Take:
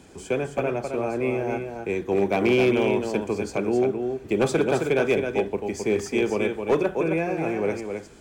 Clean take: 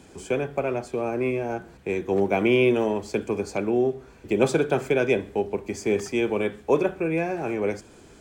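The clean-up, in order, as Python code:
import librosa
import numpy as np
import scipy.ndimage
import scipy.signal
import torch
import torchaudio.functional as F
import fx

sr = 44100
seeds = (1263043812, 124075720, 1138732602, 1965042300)

y = fx.fix_declip(x, sr, threshold_db=-14.0)
y = fx.fix_echo_inverse(y, sr, delay_ms=265, level_db=-6.0)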